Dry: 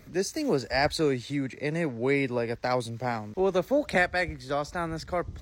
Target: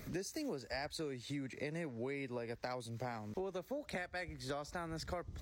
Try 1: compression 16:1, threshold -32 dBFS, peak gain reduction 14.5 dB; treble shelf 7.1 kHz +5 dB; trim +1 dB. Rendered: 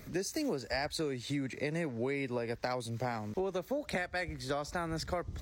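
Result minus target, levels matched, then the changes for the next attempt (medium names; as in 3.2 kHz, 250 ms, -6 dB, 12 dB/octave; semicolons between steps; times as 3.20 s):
compression: peak gain reduction -7 dB
change: compression 16:1, threshold -39.5 dBFS, peak gain reduction 21.5 dB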